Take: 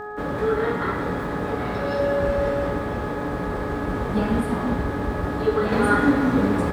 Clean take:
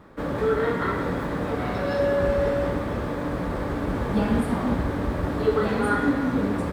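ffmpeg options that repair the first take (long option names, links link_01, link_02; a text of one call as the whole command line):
ffmpeg -i in.wav -af "adeclick=threshold=4,bandreject=frequency=419.8:width_type=h:width=4,bandreject=frequency=839.6:width_type=h:width=4,bandreject=frequency=1259.4:width_type=h:width=4,bandreject=frequency=1679.2:width_type=h:width=4,bandreject=frequency=730:width=30,asetnsamples=nb_out_samples=441:pad=0,asendcmd='5.72 volume volume -4dB',volume=0dB" out.wav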